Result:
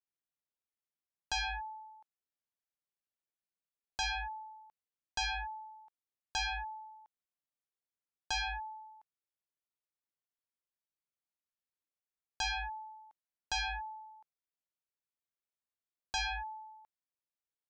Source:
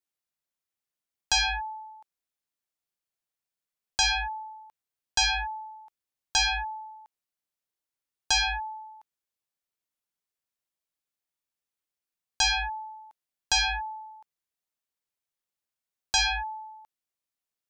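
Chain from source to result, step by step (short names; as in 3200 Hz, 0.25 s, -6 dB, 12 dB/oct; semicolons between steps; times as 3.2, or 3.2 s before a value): high shelf 4300 Hz -11.5 dB; gain -7.5 dB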